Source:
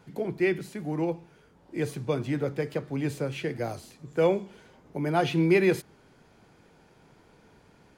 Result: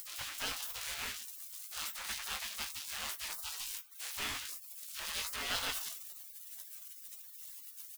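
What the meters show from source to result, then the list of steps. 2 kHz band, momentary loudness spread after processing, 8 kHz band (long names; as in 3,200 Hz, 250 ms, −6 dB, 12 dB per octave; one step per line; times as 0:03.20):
−6.0 dB, 10 LU, +10.0 dB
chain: converter with a step at zero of −30 dBFS
repeating echo 188 ms, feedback 22%, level −13 dB
upward compression, threshold −34 dBFS
leveller curve on the samples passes 1
gate on every frequency bin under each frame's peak −30 dB weak
double-tracking delay 19 ms −8.5 dB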